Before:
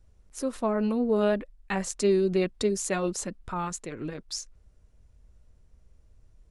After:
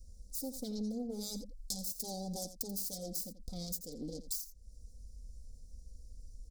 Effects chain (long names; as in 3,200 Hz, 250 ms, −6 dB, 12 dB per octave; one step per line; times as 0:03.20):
phase distortion by the signal itself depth 0.83 ms
elliptic band-stop filter 600–4,800 Hz, stop band 40 dB
guitar amp tone stack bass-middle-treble 5-5-5
comb filter 4 ms, depth 81%
downward compressor 4 to 1, threshold −57 dBFS, peak gain reduction 17.5 dB
single-tap delay 85 ms −13.5 dB
level +17.5 dB